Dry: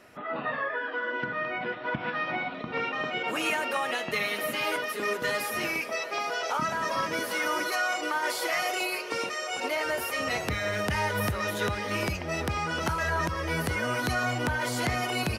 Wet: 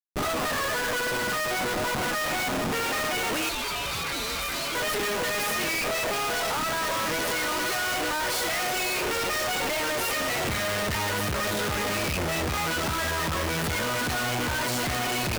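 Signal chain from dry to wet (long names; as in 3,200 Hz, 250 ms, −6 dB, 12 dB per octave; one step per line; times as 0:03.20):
harmonic generator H 6 −14 dB, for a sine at −17 dBFS
comparator with hysteresis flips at −41.5 dBFS
0:03.49–0:04.75: ring modulation 1,800 Hz
level +2 dB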